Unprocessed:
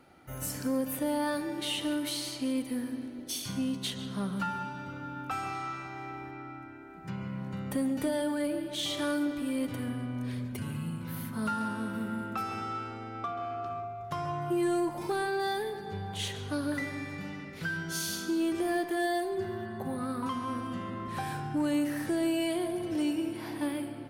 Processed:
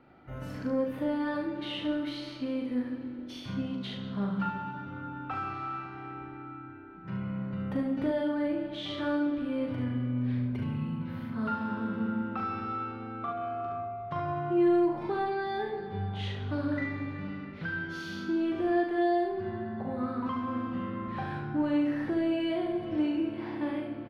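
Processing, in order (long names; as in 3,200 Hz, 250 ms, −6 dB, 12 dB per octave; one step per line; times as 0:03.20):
high-frequency loss of the air 320 metres
on a send: ambience of single reflections 40 ms −5 dB, 72 ms −5.5 dB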